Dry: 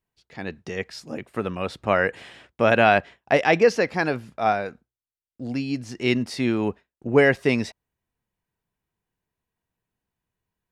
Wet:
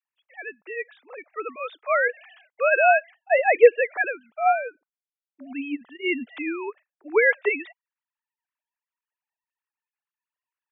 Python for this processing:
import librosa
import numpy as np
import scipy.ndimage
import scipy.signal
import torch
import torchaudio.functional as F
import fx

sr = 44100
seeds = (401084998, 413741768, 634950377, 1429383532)

y = fx.sine_speech(x, sr)
y = fx.highpass(y, sr, hz=970.0, slope=6)
y = y * 10.0 ** (5.0 / 20.0)